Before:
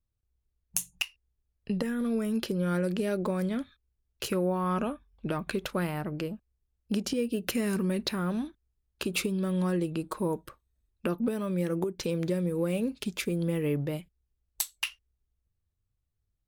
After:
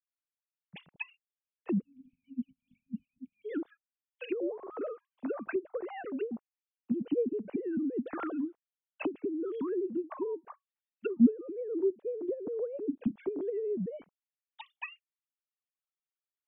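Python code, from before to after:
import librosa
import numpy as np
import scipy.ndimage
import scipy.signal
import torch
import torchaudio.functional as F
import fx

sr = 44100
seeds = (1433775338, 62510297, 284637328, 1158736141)

y = fx.sine_speech(x, sr)
y = fx.env_lowpass_down(y, sr, base_hz=330.0, full_db=-27.5)
y = fx.spec_erase(y, sr, start_s=1.8, length_s=1.65, low_hz=270.0, high_hz=2200.0)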